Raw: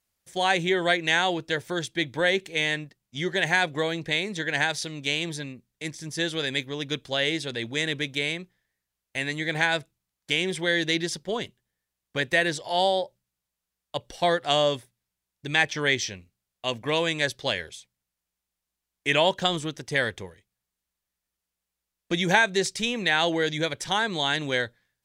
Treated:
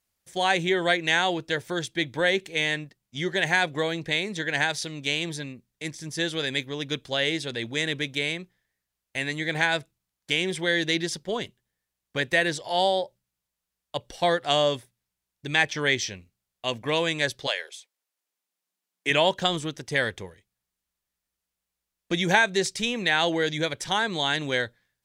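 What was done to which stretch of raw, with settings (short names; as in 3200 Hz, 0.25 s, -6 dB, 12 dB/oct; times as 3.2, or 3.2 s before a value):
17.46–19.09 HPF 530 Hz -> 140 Hz 24 dB/oct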